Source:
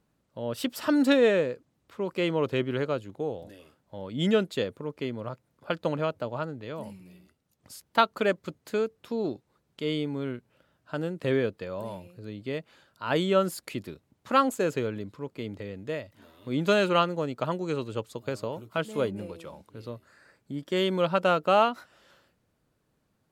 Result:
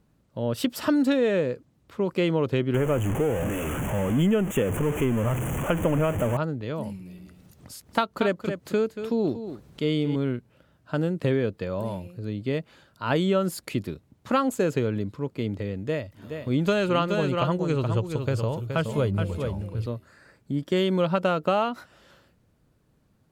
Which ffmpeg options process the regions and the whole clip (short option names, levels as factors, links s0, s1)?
-filter_complex "[0:a]asettb=1/sr,asplit=3[s0][s1][s2];[s0]atrim=end=2.744[s3];[s1]atrim=start=2.74:end=6.37,asetpts=PTS-STARTPTS,afade=t=in:d=0.004:c=qsin,afade=t=out:st=3.626:d=0.004:c=qsin,aeval=exprs='val(0)+0.5*0.0335*sgn(val(0))':c=same,asuperstop=centerf=4500:order=8:qfactor=1.4[s4];[s2]atrim=start=6.366[s5];[s3][s4]acrossfade=d=0.004:c1=hsin:c2=qsin[s6];[s6][s5]acrossfade=d=0.004:c1=qsin:c2=hsin,asettb=1/sr,asplit=3[s7][s8][s9];[s7]atrim=end=6.954[s10];[s8]atrim=start=6.95:end=10.16,asetpts=PTS-STARTPTS,afade=t=in:d=0.004:c=qsin,afade=t=out:st=3.206:d=0.004:c=qsin,acompressor=mode=upward:threshold=0.00447:ratio=2.5:attack=3.2:release=140:knee=2.83:detection=peak,aecho=1:1:233:0.251,atrim=end_sample=141561[s11];[s9]atrim=start=10.156[s12];[s10][s11]acrossfade=d=0.004:c1=hsin:c2=qsin[s13];[s13][s12]acrossfade=d=0.004:c1=qsin:c2=hsin,asettb=1/sr,asplit=3[s14][s15][s16];[s14]atrim=end=15.814[s17];[s15]atrim=start=15.81:end=19.86,asetpts=PTS-STARTPTS,afade=t=in:d=0.004:c=qsin,afade=t=out:st=4.046:d=0.004:c=qsin,bandreject=f=3900:w=28,asubboost=boost=7.5:cutoff=95,aecho=1:1:422:0.422,atrim=end_sample=178605[s18];[s16]atrim=start=19.856[s19];[s17][s18]acrossfade=d=0.004:c1=hsin:c2=qsin[s20];[s20][s19]acrossfade=d=0.004:c1=qsin:c2=hsin,lowshelf=f=260:g=8.5,acompressor=threshold=0.0794:ratio=6,volume=1.41"